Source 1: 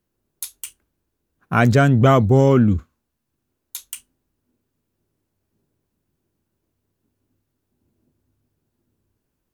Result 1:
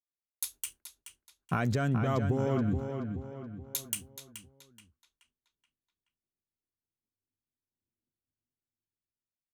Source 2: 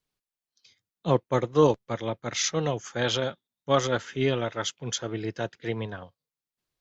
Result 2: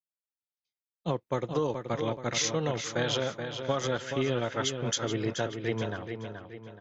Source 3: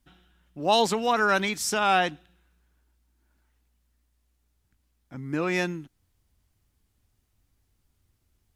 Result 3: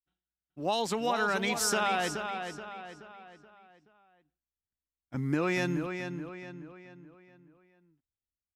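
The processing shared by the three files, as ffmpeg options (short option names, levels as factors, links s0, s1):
-filter_complex "[0:a]agate=range=0.0224:threshold=0.01:ratio=3:detection=peak,dynaudnorm=f=570:g=5:m=2.99,alimiter=limit=0.376:level=0:latency=1:release=180,acompressor=threshold=0.0891:ratio=6,asplit=2[s0][s1];[s1]adelay=427,lowpass=f=4800:p=1,volume=0.447,asplit=2[s2][s3];[s3]adelay=427,lowpass=f=4800:p=1,volume=0.45,asplit=2[s4][s5];[s5]adelay=427,lowpass=f=4800:p=1,volume=0.45,asplit=2[s6][s7];[s7]adelay=427,lowpass=f=4800:p=1,volume=0.45,asplit=2[s8][s9];[s9]adelay=427,lowpass=f=4800:p=1,volume=0.45[s10];[s0][s2][s4][s6][s8][s10]amix=inputs=6:normalize=0,volume=0.596"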